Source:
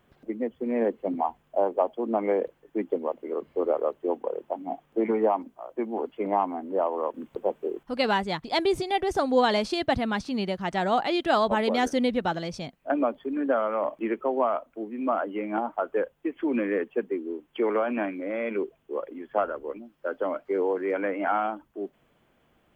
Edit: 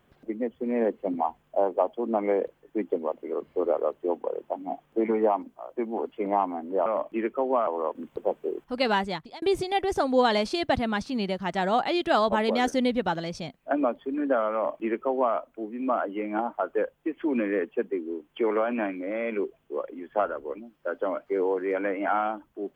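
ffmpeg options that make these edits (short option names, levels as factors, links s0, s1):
-filter_complex "[0:a]asplit=4[s0][s1][s2][s3];[s0]atrim=end=6.862[s4];[s1]atrim=start=13.728:end=14.542[s5];[s2]atrim=start=6.858:end=8.61,asetpts=PTS-STARTPTS,afade=t=out:st=1.382:d=0.37[s6];[s3]atrim=start=8.61,asetpts=PTS-STARTPTS,afade=t=in:d=0.004:c=hsin[s7];[s4][s5]acrossfade=d=0.004:c1=hsin:c2=hsin[s8];[s6][s7]concat=n=2:v=0:a=1[s9];[s8][s9]acrossfade=d=0.004:c1=hsin:c2=hsin"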